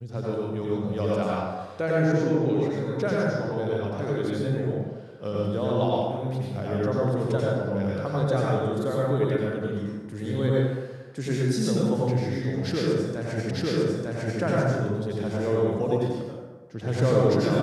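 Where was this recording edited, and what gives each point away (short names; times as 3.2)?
13.51 repeat of the last 0.9 s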